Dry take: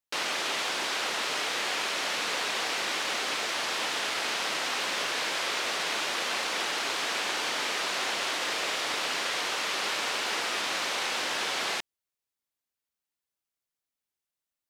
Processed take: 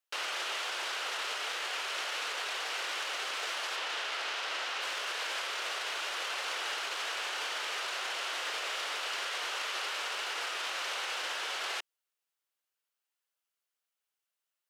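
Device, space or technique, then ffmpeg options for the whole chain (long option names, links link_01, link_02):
laptop speaker: -filter_complex "[0:a]asettb=1/sr,asplit=3[link_01][link_02][link_03];[link_01]atrim=end=3.764[link_04];[link_02]atrim=start=3.76:end=4.82,asetpts=PTS-STARTPTS,afade=type=in:duration=0.004:curve=qsin,afade=type=out:start_time=1.056:duration=0.004:curve=qsin,acrossover=split=6400[link_05][link_06];[link_06]acompressor=threshold=-50dB:ratio=4:attack=1:release=60[link_07];[link_05][link_07]amix=inputs=2:normalize=0[link_08];[link_03]atrim=start=4.816[link_09];[link_04][link_08]acrossfade=duration=0.004:curve1=hsin:curve2=qsin[link_10];[link_10][link_09]acrossfade=duration=0.004:curve1=qsin:curve2=hsin,highpass=frequency=390:width=0.5412,highpass=frequency=390:width=1.3066,equalizer=frequency=1400:width_type=o:width=0.56:gain=4.5,equalizer=frequency=2900:width_type=o:width=0.34:gain=4.5,alimiter=level_in=3.5dB:limit=-24dB:level=0:latency=1:release=22,volume=-3.5dB"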